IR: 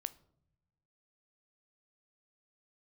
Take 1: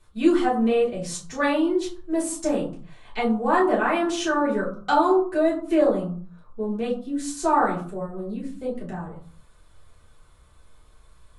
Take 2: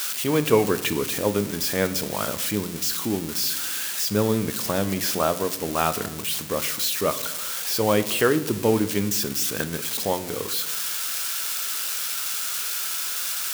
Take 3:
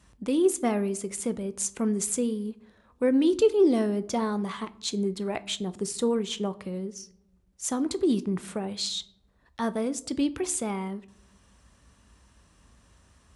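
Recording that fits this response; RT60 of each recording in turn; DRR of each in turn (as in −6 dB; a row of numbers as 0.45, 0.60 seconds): 3; 0.50 s, 1.2 s, non-exponential decay; −8.5, 11.0, 13.5 decibels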